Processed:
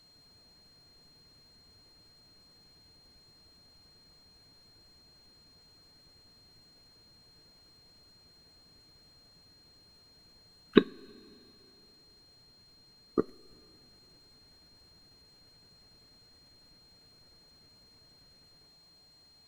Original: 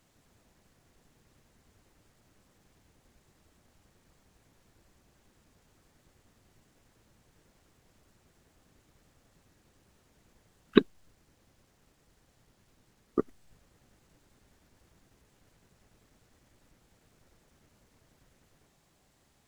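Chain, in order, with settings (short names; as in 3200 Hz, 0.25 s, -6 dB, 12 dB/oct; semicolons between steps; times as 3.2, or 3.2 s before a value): two-slope reverb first 0.21 s, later 3.1 s, from -22 dB, DRR 15 dB; whine 4200 Hz -59 dBFS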